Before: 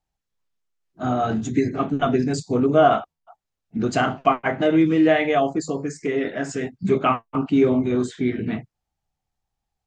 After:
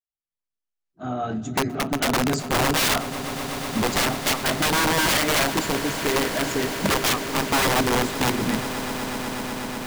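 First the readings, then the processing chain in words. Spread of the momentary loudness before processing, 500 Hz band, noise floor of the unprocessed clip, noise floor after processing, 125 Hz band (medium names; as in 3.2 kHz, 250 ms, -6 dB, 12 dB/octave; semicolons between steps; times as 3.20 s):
11 LU, -5.0 dB, -83 dBFS, under -85 dBFS, -1.0 dB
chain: fade-in on the opening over 2.29 s; integer overflow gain 16 dB; echo with a slow build-up 123 ms, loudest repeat 8, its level -17 dB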